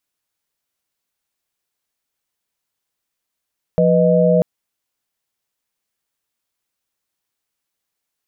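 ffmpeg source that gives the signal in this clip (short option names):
-f lavfi -i "aevalsrc='0.178*(sin(2*PI*174.61*t)+sin(2*PI*493.88*t)+sin(2*PI*622.25*t))':d=0.64:s=44100"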